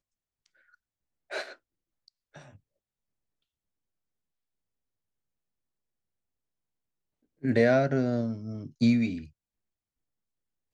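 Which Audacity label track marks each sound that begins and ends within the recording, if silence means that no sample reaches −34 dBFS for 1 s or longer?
1.320000	1.480000	sound
7.440000	9.210000	sound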